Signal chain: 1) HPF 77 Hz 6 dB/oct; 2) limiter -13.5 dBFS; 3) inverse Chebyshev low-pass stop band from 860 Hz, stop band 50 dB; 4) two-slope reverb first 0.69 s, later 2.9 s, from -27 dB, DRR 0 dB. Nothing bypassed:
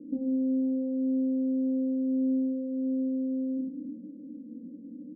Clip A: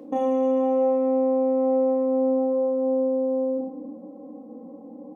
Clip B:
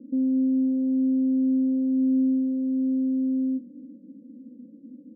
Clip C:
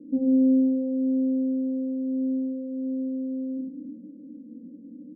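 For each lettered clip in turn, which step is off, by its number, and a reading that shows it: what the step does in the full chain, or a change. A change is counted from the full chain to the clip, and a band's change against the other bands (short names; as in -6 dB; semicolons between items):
3, crest factor change +2.0 dB; 4, momentary loudness spread change -13 LU; 2, crest factor change +4.5 dB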